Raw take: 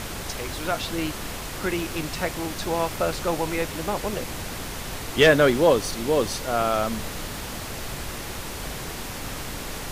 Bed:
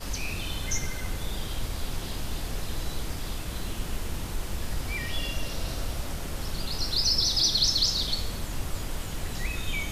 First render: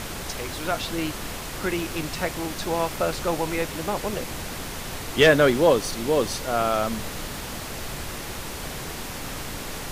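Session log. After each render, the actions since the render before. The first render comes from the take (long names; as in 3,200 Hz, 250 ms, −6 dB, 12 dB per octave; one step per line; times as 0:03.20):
hum removal 50 Hz, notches 2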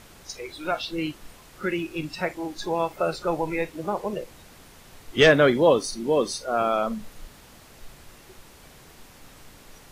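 noise reduction from a noise print 16 dB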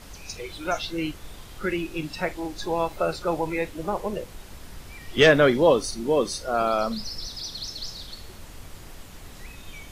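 mix in bed −11.5 dB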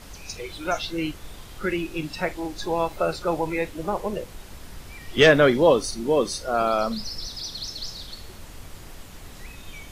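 level +1 dB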